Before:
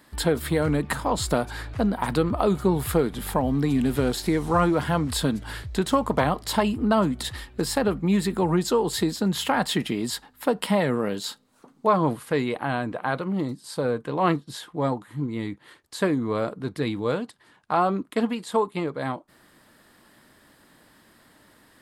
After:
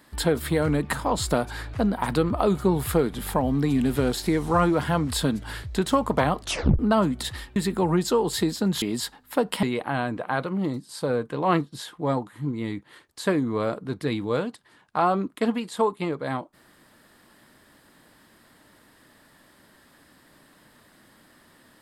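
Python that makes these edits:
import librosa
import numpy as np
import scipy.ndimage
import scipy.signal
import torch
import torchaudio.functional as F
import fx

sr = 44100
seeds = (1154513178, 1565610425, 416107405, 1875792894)

y = fx.edit(x, sr, fx.tape_stop(start_s=6.41, length_s=0.38),
    fx.cut(start_s=7.56, length_s=0.6),
    fx.cut(start_s=9.42, length_s=0.5),
    fx.cut(start_s=10.73, length_s=1.65), tone=tone)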